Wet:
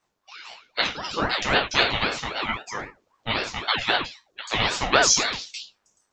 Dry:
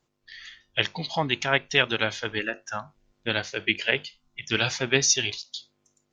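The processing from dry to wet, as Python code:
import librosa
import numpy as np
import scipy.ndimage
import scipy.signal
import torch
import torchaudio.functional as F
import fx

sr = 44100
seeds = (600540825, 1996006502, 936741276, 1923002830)

y = fx.band_shelf(x, sr, hz=860.0, db=10.0, octaves=1.7, at=(4.92, 5.42))
y = fx.rev_gated(y, sr, seeds[0], gate_ms=130, shape='falling', drr_db=-3.0)
y = fx.ring_lfo(y, sr, carrier_hz=730.0, swing_pct=55, hz=3.8)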